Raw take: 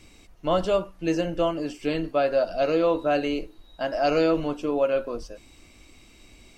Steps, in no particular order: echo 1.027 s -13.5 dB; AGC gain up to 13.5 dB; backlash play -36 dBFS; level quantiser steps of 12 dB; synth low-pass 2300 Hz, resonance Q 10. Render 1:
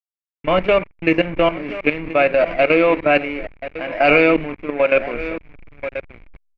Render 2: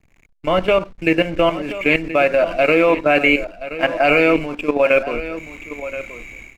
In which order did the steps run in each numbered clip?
echo > level quantiser > backlash > synth low-pass > AGC; synth low-pass > level quantiser > AGC > backlash > echo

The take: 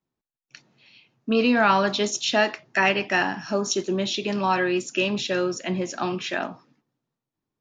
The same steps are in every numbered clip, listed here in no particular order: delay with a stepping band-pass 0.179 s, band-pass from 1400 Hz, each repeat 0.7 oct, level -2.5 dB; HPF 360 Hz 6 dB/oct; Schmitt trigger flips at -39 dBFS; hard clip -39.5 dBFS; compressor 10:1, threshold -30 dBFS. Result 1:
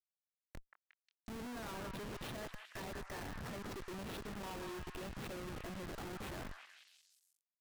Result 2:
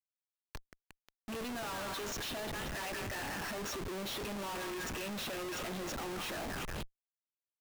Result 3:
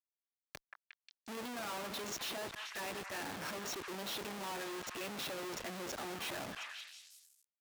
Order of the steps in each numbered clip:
compressor > hard clip > HPF > Schmitt trigger > delay with a stepping band-pass; HPF > compressor > delay with a stepping band-pass > Schmitt trigger > hard clip; compressor > Schmitt trigger > delay with a stepping band-pass > hard clip > HPF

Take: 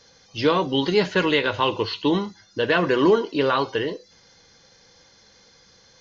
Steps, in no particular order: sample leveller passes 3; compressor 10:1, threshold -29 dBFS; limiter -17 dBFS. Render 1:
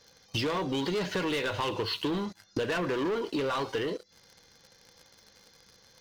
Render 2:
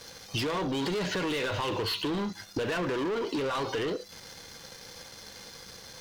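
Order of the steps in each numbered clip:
sample leveller > compressor > limiter; limiter > sample leveller > compressor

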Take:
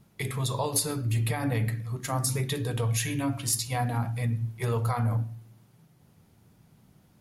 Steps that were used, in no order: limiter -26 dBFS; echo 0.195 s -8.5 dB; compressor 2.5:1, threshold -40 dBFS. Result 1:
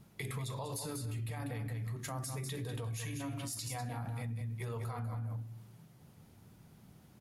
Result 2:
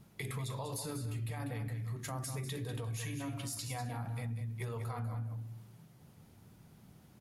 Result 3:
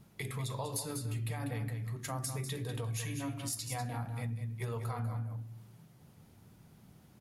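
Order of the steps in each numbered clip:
echo > limiter > compressor; limiter > echo > compressor; echo > compressor > limiter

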